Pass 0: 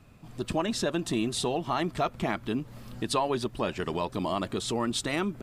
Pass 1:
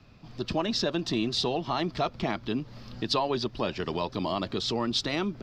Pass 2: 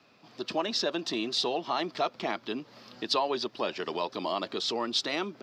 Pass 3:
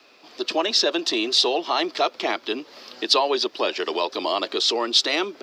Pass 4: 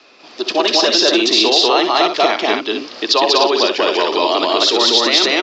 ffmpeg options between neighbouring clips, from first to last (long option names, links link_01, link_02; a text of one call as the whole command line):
ffmpeg -i in.wav -filter_complex "[0:a]highshelf=frequency=6800:width_type=q:width=3:gain=-12,acrossover=split=110|1400|2100[link_01][link_02][link_03][link_04];[link_03]acompressor=threshold=-48dB:ratio=6[link_05];[link_01][link_02][link_05][link_04]amix=inputs=4:normalize=0" out.wav
ffmpeg -i in.wav -af "highpass=340" out.wav
ffmpeg -i in.wav -filter_complex "[0:a]lowshelf=frequency=230:width_type=q:width=1.5:gain=-13.5,acrossover=split=250|2000[link_01][link_02][link_03];[link_03]acontrast=36[link_04];[link_01][link_02][link_04]amix=inputs=3:normalize=0,volume=5.5dB" out.wav
ffmpeg -i in.wav -filter_complex "[0:a]asplit=2[link_01][link_02];[link_02]aecho=0:1:64.14|192.4|247.8:0.316|1|0.562[link_03];[link_01][link_03]amix=inputs=2:normalize=0,aresample=16000,aresample=44100,alimiter=level_in=7dB:limit=-1dB:release=50:level=0:latency=1,volume=-1dB" out.wav